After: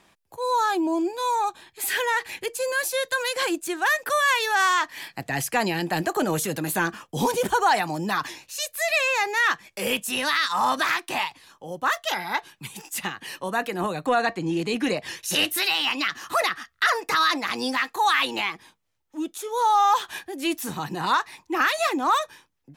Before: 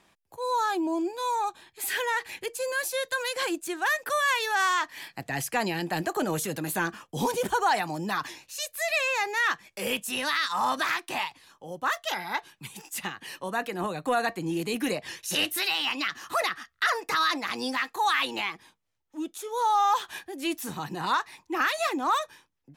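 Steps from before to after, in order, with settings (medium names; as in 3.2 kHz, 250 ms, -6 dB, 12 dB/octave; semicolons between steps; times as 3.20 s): 14.06–14.97 s: low-pass 6.7 kHz 12 dB/octave; trim +4 dB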